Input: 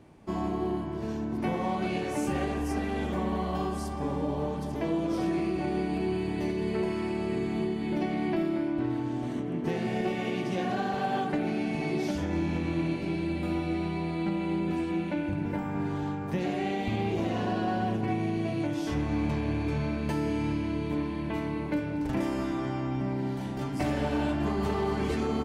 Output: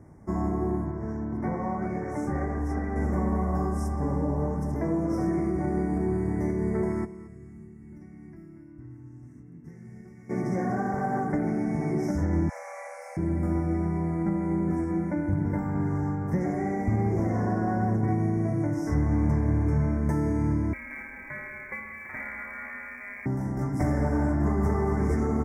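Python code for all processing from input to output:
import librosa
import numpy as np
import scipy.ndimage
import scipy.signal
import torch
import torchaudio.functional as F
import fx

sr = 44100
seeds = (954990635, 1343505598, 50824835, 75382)

y = fx.chain(x, sr, fx.lowpass(hz=1700.0, slope=6),
    fx.tilt_shelf(db=-3.5, hz=840.0), at=(0.91, 2.96))
y = fx.tone_stack(y, sr, knobs='6-0-2', at=(7.04, 10.29), fade=0.02)
y = fx.dmg_tone(y, sr, hz=2700.0, level_db=-54.0, at=(7.04, 10.29), fade=0.02)
y = fx.echo_feedback(y, sr, ms=225, feedback_pct=26, wet_db=-17.0, at=(7.04, 10.29), fade=0.02)
y = fx.chain(y, sr, fx.brickwall_highpass(low_hz=480.0),
    fx.tilt_eq(slope=1.5),
    fx.room_flutter(wall_m=4.8, rt60_s=0.58), at=(12.49, 13.17))
y = fx.chain(y, sr, fx.low_shelf(hz=130.0, db=-10.5),
    fx.freq_invert(carrier_hz=2600),
    fx.quant_companded(bits=8), at=(20.73, 23.26))
y = scipy.signal.sosfilt(scipy.signal.cheby1(4, 1.0, [2100.0, 5300.0], 'bandstop', fs=sr, output='sos'), y)
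y = fx.peak_eq(y, sr, hz=76.0, db=10.0, octaves=2.7)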